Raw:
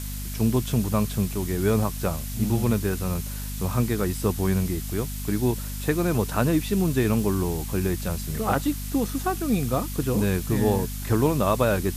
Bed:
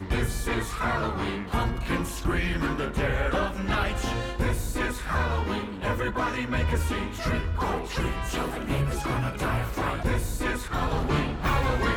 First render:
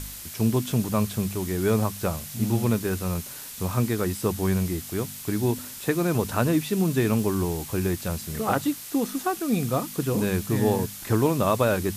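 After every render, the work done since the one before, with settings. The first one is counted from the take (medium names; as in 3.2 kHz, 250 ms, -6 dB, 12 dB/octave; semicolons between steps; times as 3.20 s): de-hum 50 Hz, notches 5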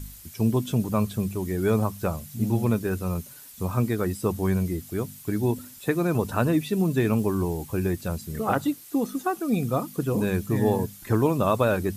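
noise reduction 11 dB, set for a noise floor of -39 dBFS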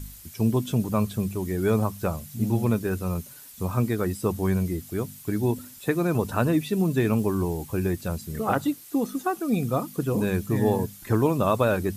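no audible change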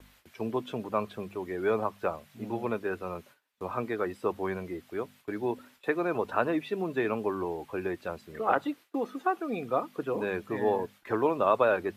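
gate with hold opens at -32 dBFS; three-band isolator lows -20 dB, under 340 Hz, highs -22 dB, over 3.3 kHz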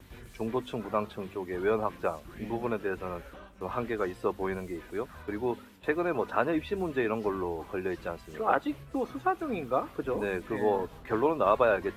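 add bed -22.5 dB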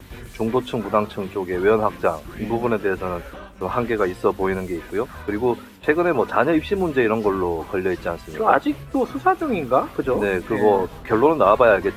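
trim +10.5 dB; peak limiter -2 dBFS, peak gain reduction 2.5 dB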